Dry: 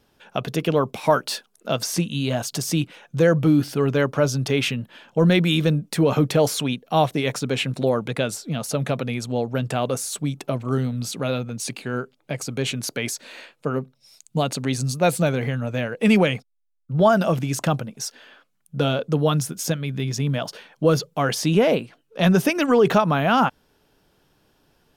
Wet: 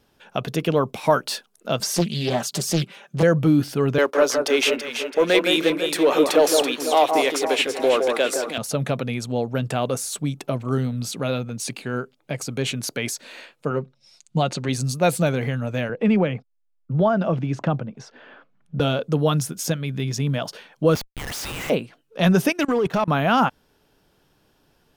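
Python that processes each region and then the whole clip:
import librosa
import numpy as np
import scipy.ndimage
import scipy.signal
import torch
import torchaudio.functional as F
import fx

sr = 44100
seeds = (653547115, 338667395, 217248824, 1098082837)

y = fx.chain(x, sr, fx.highpass(hz=89.0, slope=12),
    fx.comb(ms=5.1, depth=0.77),
    fx.doppler_dist(depth_ms=0.91), at=(1.8, 3.23))
y = fx.chain(y, sr, fx.highpass(hz=330.0, slope=24),
    fx.leveller(passes=1),
    fx.echo_alternate(ms=166, hz=1700.0, feedback_pct=69, wet_db=-4.5), at=(3.98, 8.58))
y = fx.chain(y, sr, fx.lowpass(hz=6200.0, slope=12),
    fx.comb(ms=5.6, depth=0.43), at=(13.7, 14.69))
y = fx.chain(y, sr, fx.spacing_loss(db_at_10k=29),
    fx.band_squash(depth_pct=40), at=(15.89, 18.8))
y = fx.chain(y, sr, fx.brickwall_highpass(low_hz=1700.0),
    fx.high_shelf(hz=9900.0, db=7.5),
    fx.schmitt(flips_db=-35.5), at=(20.95, 21.7))
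y = fx.chain(y, sr, fx.level_steps(step_db=22),
    fx.leveller(passes=1), at=(22.52, 23.08))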